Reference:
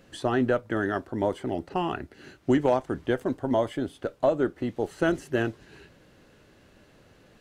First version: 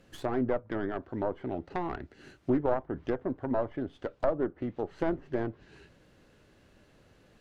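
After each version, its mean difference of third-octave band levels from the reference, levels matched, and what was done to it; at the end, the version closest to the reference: 3.0 dB: tracing distortion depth 0.35 ms; low shelf 80 Hz +4.5 dB; treble ducked by the level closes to 1200 Hz, closed at -23 dBFS; gain -5 dB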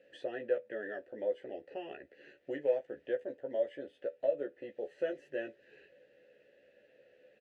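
8.0 dB: in parallel at +1.5 dB: compressor, threshold -34 dBFS, peak gain reduction 15.5 dB; on the sum: vowel filter e; doubler 14 ms -3.5 dB; gain -5 dB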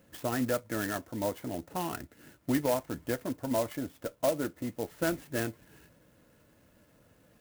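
6.0 dB: dynamic EQ 2200 Hz, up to +7 dB, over -51 dBFS, Q 2.3; notch comb 390 Hz; clock jitter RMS 0.063 ms; gain -5 dB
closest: first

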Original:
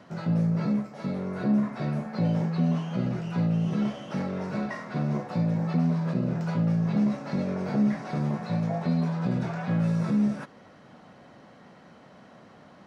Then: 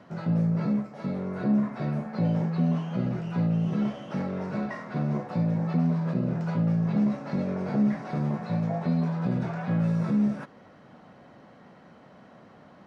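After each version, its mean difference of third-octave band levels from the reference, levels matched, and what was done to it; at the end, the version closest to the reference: 1.0 dB: high shelf 3500 Hz -7.5 dB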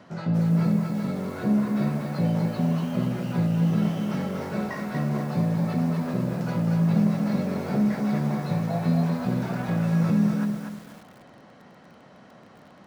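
4.0 dB: lo-fi delay 0.239 s, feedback 35%, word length 8-bit, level -4 dB; gain +1 dB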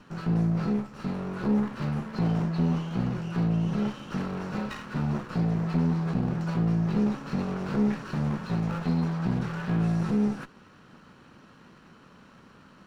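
2.5 dB: minimum comb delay 0.7 ms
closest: first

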